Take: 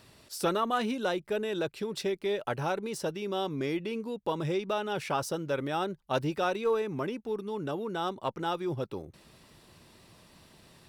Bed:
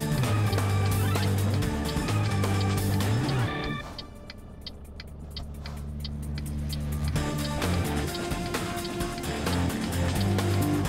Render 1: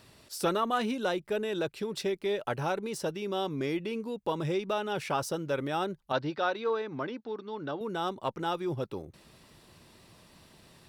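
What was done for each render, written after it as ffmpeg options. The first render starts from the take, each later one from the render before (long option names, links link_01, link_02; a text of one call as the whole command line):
ffmpeg -i in.wav -filter_complex "[0:a]asettb=1/sr,asplit=3[link_01][link_02][link_03];[link_01]atrim=end=6.124[link_04];[link_02]atrim=start=6.12:end=7.81,asetpts=PTS-STARTPTS,afade=type=in:duration=0.004:curve=qsin,afade=type=out:start_time=1.686:duration=0.004:curve=qsin,highpass=140,equalizer=frequency=190:width_type=q:width=4:gain=-8,equalizer=frequency=400:width_type=q:width=4:gain=-5,equalizer=frequency=1500:width_type=q:width=4:gain=3,equalizer=frequency=2600:width_type=q:width=4:gain=-5,equalizer=frequency=4300:width_type=q:width=4:gain=5,lowpass=frequency=4800:width=0.5412,lowpass=frequency=4800:width=1.3066[link_05];[link_03]atrim=start=7.806[link_06];[link_04][link_05]acrossfade=duration=0.004:curve1=hsin:curve2=qsin[link_07];[link_07][link_06]acrossfade=duration=0.004:curve1=qsin:curve2=hsin" out.wav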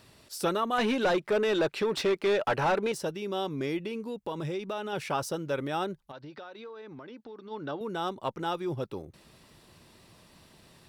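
ffmpeg -i in.wav -filter_complex "[0:a]asettb=1/sr,asplit=3[link_01][link_02][link_03];[link_01]atrim=end=0.784[link_04];[link_02]atrim=start=0.78:end=2.92,asetpts=PTS-STARTPTS,afade=type=in:duration=0.004:curve=qsin,afade=type=out:start_time=2.136:duration=0.004:curve=qsin,asplit=2[link_05][link_06];[link_06]highpass=frequency=720:poles=1,volume=21dB,asoftclip=type=tanh:threshold=-17dB[link_07];[link_05][link_07]amix=inputs=2:normalize=0,lowpass=frequency=2200:poles=1,volume=-6dB[link_08];[link_03]atrim=start=2.916[link_09];[link_04][link_08]acrossfade=duration=0.004:curve1=hsin:curve2=qsin[link_10];[link_10][link_09]acrossfade=duration=0.004:curve1=qsin:curve2=hsin,asettb=1/sr,asplit=3[link_11][link_12][link_13];[link_11]atrim=end=3.874[link_14];[link_12]atrim=start=3.87:end=4.93,asetpts=PTS-STARTPTS,afade=type=in:duration=0.004:curve=qsin,afade=type=out:start_time=1.056:duration=0.004:curve=qsin,acompressor=threshold=-31dB:ratio=2.5:attack=3.2:release=140:knee=1:detection=peak[link_15];[link_13]atrim=start=4.926[link_16];[link_14][link_15]acrossfade=duration=0.004:curve1=hsin:curve2=qsin[link_17];[link_17][link_16]acrossfade=duration=0.004:curve1=qsin:curve2=hsin,asplit=3[link_18][link_19][link_20];[link_18]afade=type=out:start_time=6.03:duration=0.02[link_21];[link_19]acompressor=threshold=-41dB:ratio=8:attack=3.2:release=140:knee=1:detection=peak,afade=type=in:start_time=6.03:duration=0.02,afade=type=out:start_time=7.5:duration=0.02[link_22];[link_20]afade=type=in:start_time=7.5:duration=0.02[link_23];[link_21][link_22][link_23]amix=inputs=3:normalize=0" out.wav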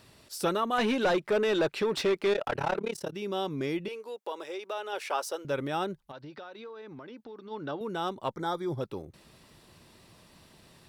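ffmpeg -i in.wav -filter_complex "[0:a]asettb=1/sr,asplit=3[link_01][link_02][link_03];[link_01]atrim=end=2.334[link_04];[link_02]atrim=start=2.33:end=3.13,asetpts=PTS-STARTPTS,afade=type=in:duration=0.004:curve=qsin,afade=type=out:start_time=0.796:duration=0.004:curve=qsin,tremolo=f=35:d=0.947[link_05];[link_03]atrim=start=3.126[link_06];[link_04][link_05]acrossfade=duration=0.004:curve1=hsin:curve2=qsin[link_07];[link_07][link_06]acrossfade=duration=0.004:curve1=qsin:curve2=hsin,asettb=1/sr,asplit=3[link_08][link_09][link_10];[link_08]atrim=end=3.884[link_11];[link_09]atrim=start=3.88:end=5.45,asetpts=PTS-STARTPTS,afade=type=in:duration=0.004:curve=qsin,afade=type=out:start_time=1.566:duration=0.004:curve=qsin,highpass=frequency=410:width=0.5412,highpass=frequency=410:width=1.3066[link_12];[link_10]atrim=start=5.446[link_13];[link_11][link_12]acrossfade=duration=0.004:curve1=hsin:curve2=qsin[link_14];[link_14][link_13]acrossfade=duration=0.004:curve1=qsin:curve2=hsin,asettb=1/sr,asplit=3[link_15][link_16][link_17];[link_15]atrim=end=8.354[link_18];[link_16]atrim=start=8.35:end=8.81,asetpts=PTS-STARTPTS,afade=type=in:duration=0.004:curve=qsin,afade=type=out:start_time=0.456:duration=0.004:curve=qsin,asuperstop=centerf=2700:order=20:qfactor=3.5[link_19];[link_17]atrim=start=8.806[link_20];[link_18][link_19]acrossfade=duration=0.004:curve1=hsin:curve2=qsin[link_21];[link_21][link_20]acrossfade=duration=0.004:curve1=qsin:curve2=hsin" out.wav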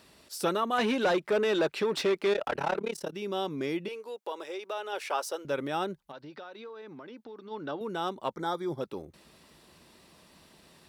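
ffmpeg -i in.wav -af "highpass=49,equalizer=frequency=110:width=3.3:gain=-15" out.wav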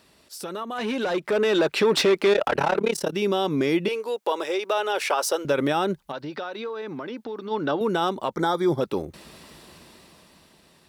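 ffmpeg -i in.wav -af "alimiter=level_in=1dB:limit=-24dB:level=0:latency=1:release=77,volume=-1dB,dynaudnorm=framelen=200:gausssize=13:maxgain=12dB" out.wav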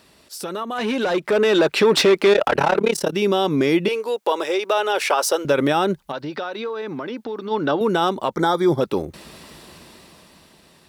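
ffmpeg -i in.wav -af "volume=4.5dB" out.wav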